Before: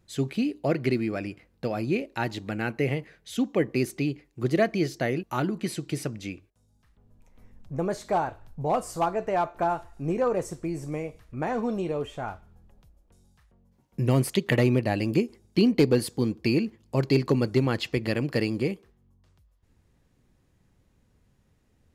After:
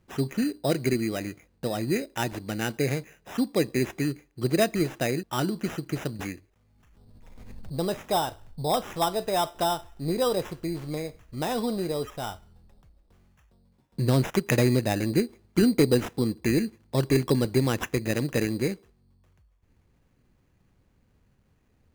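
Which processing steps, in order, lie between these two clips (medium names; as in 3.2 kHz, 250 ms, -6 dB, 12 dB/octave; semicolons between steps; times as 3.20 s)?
sample-and-hold 10×; 6.19–7.73 s: swell ahead of each attack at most 28 dB/s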